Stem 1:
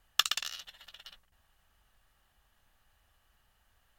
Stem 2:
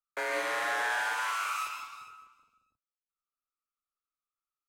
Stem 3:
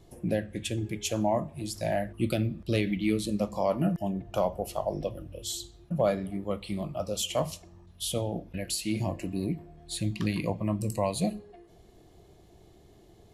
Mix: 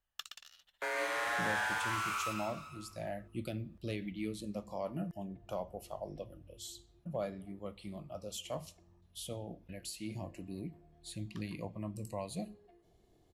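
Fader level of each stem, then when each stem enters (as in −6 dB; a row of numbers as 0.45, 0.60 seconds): −18.5, −3.5, −12.0 decibels; 0.00, 0.65, 1.15 seconds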